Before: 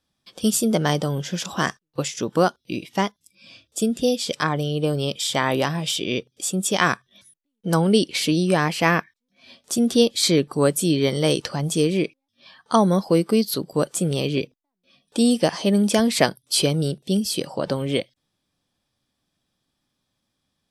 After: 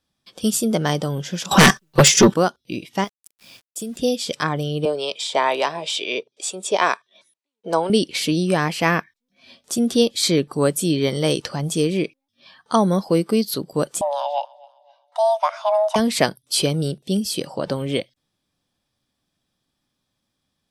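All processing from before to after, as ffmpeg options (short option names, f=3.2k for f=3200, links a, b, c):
-filter_complex "[0:a]asettb=1/sr,asplit=3[a][b][c];[a]atrim=end=1.514[d];[b]atrim=start=1.51:end=2.34,asetpts=PTS-STARTPTS,afade=t=in:d=0.004:c=qsin,afade=t=out:st=0.826:d=0.004:c=qsin,aecho=1:1:5.2:0.71,atrim=end_sample=36603,aeval=exprs='0.531*sin(PI/2*3.98*val(0)/0.531)':c=same[e];[c]atrim=start=2.336[f];[d][e]acrossfade=d=0.004:c1=hsin:c2=qsin[g];[g][f]acrossfade=d=0.004:c1=qsin:c2=hsin,asettb=1/sr,asplit=3[h][i][j];[h]atrim=end=3.044[k];[i]atrim=start=3.04:end=3.97,asetpts=PTS-STARTPTS,afade=t=in:d=0.004:c=qsin,afade=t=out:st=0.926:d=0.004:c=qsin,highshelf=f=7.4k:g=9.5,acompressor=threshold=-30dB:ratio=2.5:attack=3.2:release=140:knee=1:detection=peak,aeval=exprs='val(0)*gte(abs(val(0)),0.00531)':c=same[l];[j]atrim=start=3.966[m];[k][l]acrossfade=d=0.004:c1=hsin:c2=qsin[n];[n][m]acrossfade=d=0.004:c1=qsin:c2=hsin,asettb=1/sr,asplit=3[o][p][q];[o]atrim=end=4.854[r];[p]atrim=start=4.85:end=7.9,asetpts=PTS-STARTPTS,afade=t=in:d=0.004:c=qsin,afade=t=out:st=3.046:d=0.004:c=qsin,acrossover=split=850[s][t];[s]aeval=exprs='val(0)*(1-0.5/2+0.5/2*cos(2*PI*2.1*n/s))':c=same[u];[t]aeval=exprs='val(0)*(1-0.5/2-0.5/2*cos(2*PI*2.1*n/s))':c=same[v];[u][v]amix=inputs=2:normalize=0,highpass=380,equalizer=f=420:t=q:w=4:g=7,equalizer=f=640:t=q:w=4:g=8,equalizer=f=950:t=q:w=4:g=9,equalizer=f=2.4k:t=q:w=4:g=6,equalizer=f=4k:t=q:w=4:g=5,lowpass=f=9.3k:w=0.5412,lowpass=f=9.3k:w=1.3066[w];[q]atrim=start=7.896[x];[r][w]acrossfade=d=0.004:c1=hsin:c2=qsin[y];[y][x]acrossfade=d=0.004:c1=qsin:c2=hsin,asettb=1/sr,asplit=3[z][aa][ab];[z]atrim=end=14.014[ac];[aa]atrim=start=14.01:end=15.96,asetpts=PTS-STARTPTS,afade=t=in:d=0.004:c=qsin,afade=t=out:st=1.946:d=0.004:c=qsin,lowpass=f=1.1k:p=1,afreqshift=430,aecho=1:1:260|520|780:0.0631|0.0259|0.0106,atrim=end_sample=85995[ad];[ab]atrim=start=15.956[ae];[ac][ad]acrossfade=d=0.004:c1=hsin:c2=qsin[af];[af][ae]acrossfade=d=0.004:c1=qsin:c2=hsin"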